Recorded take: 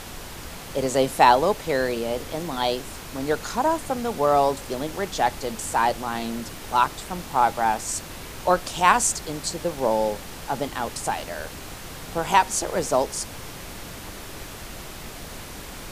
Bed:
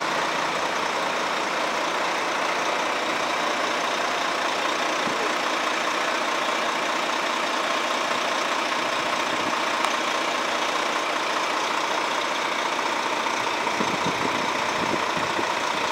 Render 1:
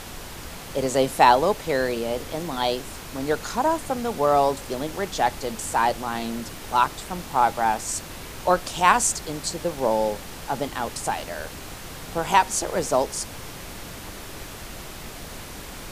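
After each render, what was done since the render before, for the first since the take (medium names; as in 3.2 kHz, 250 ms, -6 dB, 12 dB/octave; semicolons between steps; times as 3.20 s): no audible change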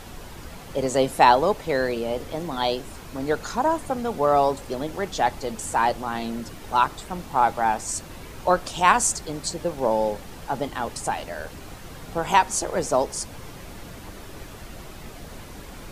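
noise reduction 7 dB, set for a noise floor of -39 dBFS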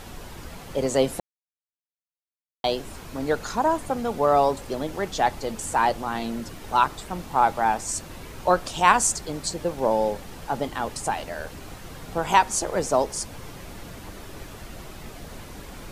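1.20–2.64 s: mute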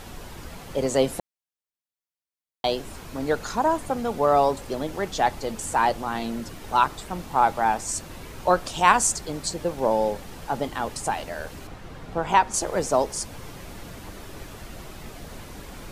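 11.67–12.54 s: low-pass 2.6 kHz 6 dB/octave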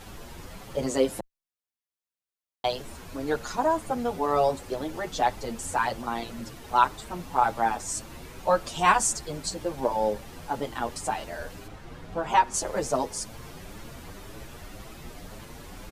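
endless flanger 7.6 ms +1.9 Hz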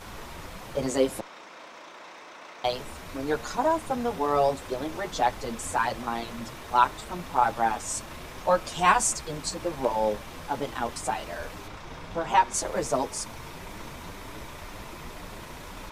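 add bed -21 dB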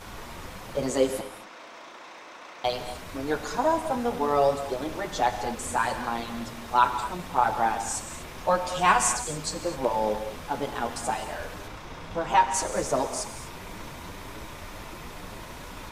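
gated-style reverb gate 270 ms flat, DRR 7.5 dB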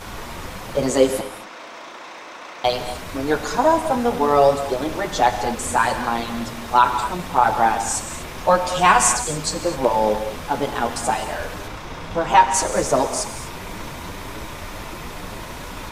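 trim +7.5 dB; peak limiter -2 dBFS, peak gain reduction 3 dB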